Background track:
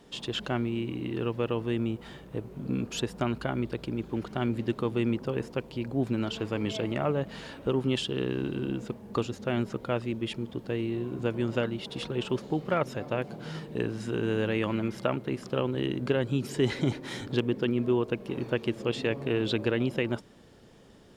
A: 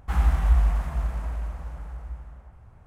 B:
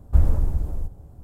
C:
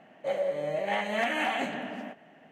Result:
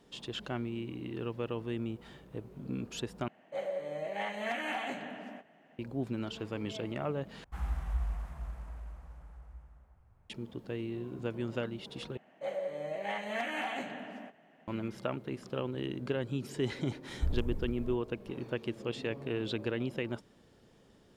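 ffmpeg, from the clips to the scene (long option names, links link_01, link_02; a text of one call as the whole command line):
ffmpeg -i bed.wav -i cue0.wav -i cue1.wav -i cue2.wav -filter_complex "[3:a]asplit=2[link_01][link_02];[0:a]volume=-7dB,asplit=4[link_03][link_04][link_05][link_06];[link_03]atrim=end=3.284[link_07];[link_01]atrim=end=2.51,asetpts=PTS-STARTPTS,volume=-7dB[link_08];[link_04]atrim=start=5.786:end=7.444[link_09];[1:a]atrim=end=2.86,asetpts=PTS-STARTPTS,volume=-14dB[link_10];[link_05]atrim=start=10.296:end=12.174[link_11];[link_02]atrim=end=2.51,asetpts=PTS-STARTPTS,volume=-7dB[link_12];[link_06]atrim=start=14.676[link_13];[2:a]atrim=end=1.23,asetpts=PTS-STARTPTS,volume=-15dB,afade=type=in:duration=0.004:curve=hsin,afade=type=out:start_time=1.226:duration=0.004:curve=hsin,adelay=17080[link_14];[link_07][link_08]acrossfade=duration=0.004:curve1=hsin:curve2=hsin[link_15];[link_15][link_09]acrossfade=duration=0.004:curve1=hsin:curve2=hsin[link_16];[link_16][link_10]acrossfade=duration=0.004:curve1=hsin:curve2=hsin[link_17];[link_17][link_11]acrossfade=duration=0.004:curve1=hsin:curve2=hsin[link_18];[link_18][link_12]acrossfade=duration=0.004:curve1=hsin:curve2=hsin[link_19];[link_19][link_13]acrossfade=duration=0.004:curve1=hsin:curve2=hsin[link_20];[link_20][link_14]amix=inputs=2:normalize=0" out.wav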